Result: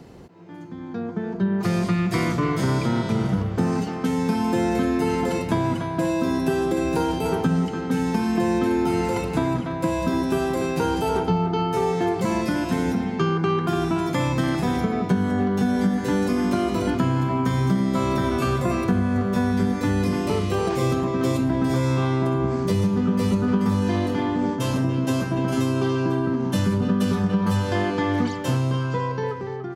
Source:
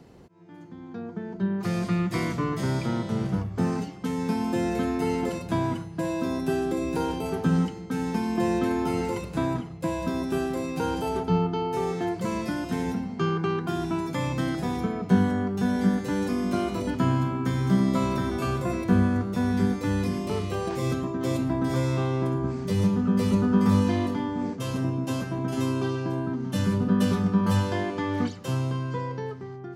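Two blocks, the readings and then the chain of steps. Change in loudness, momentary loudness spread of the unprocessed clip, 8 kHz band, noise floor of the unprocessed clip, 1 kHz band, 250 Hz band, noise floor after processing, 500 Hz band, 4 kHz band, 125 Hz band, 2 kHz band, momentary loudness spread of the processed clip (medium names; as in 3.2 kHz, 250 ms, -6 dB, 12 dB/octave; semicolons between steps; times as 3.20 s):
+4.0 dB, 7 LU, +4.5 dB, -40 dBFS, +5.0 dB, +3.5 dB, -30 dBFS, +5.0 dB, +4.5 dB, +3.5 dB, +5.0 dB, 3 LU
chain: speakerphone echo 290 ms, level -7 dB; compression, threshold -24 dBFS, peak gain reduction 10 dB; trim +6.5 dB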